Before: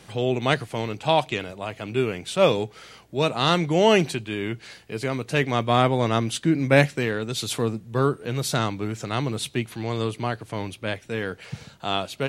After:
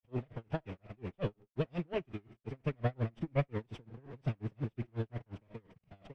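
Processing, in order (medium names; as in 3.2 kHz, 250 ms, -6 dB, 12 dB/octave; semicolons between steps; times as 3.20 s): comb filter that takes the minimum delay 0.37 ms; word length cut 6-bit, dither none; one-sided clip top -21 dBFS; low-pass 2 kHz 12 dB/octave; on a send at -15.5 dB: reverberation RT60 0.45 s, pre-delay 55 ms; on the sum: time stretch by phase-locked vocoder 0.5×; bass shelf 230 Hz +6 dB; logarithmic tremolo 5.6 Hz, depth 36 dB; trim -8 dB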